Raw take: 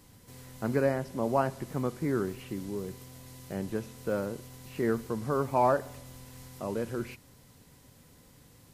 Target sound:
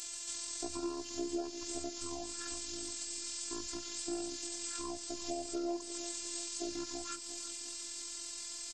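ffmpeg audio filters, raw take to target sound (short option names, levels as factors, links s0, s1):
-filter_complex "[0:a]aemphasis=mode=production:type=riaa,acompressor=threshold=0.00794:ratio=5,asetrate=24750,aresample=44100,atempo=1.7818,afftfilt=real='hypot(re,im)*cos(PI*b)':imag='0':win_size=512:overlap=0.75,asplit=2[s0][s1];[s1]aecho=0:1:351|702|1053|1404|1755|2106:0.2|0.118|0.0695|0.041|0.0242|0.0143[s2];[s0][s2]amix=inputs=2:normalize=0,volume=2.66"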